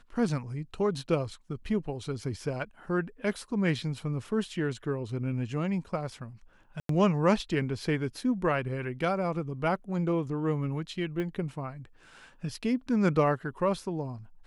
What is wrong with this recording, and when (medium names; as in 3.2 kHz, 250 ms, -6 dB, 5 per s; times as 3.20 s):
6.80–6.89 s: dropout 93 ms
11.20 s: pop -23 dBFS